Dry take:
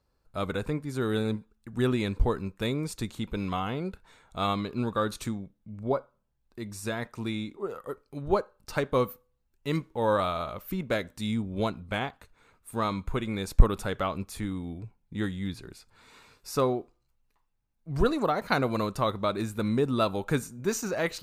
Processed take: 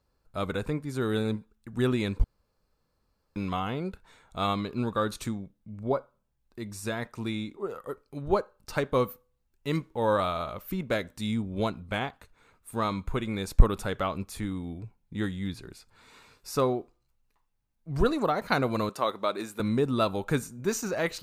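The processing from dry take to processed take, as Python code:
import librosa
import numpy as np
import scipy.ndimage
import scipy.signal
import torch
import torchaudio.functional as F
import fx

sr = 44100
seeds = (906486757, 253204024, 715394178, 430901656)

y = fx.highpass(x, sr, hz=320.0, slope=12, at=(18.89, 19.6))
y = fx.edit(y, sr, fx.room_tone_fill(start_s=2.24, length_s=1.12), tone=tone)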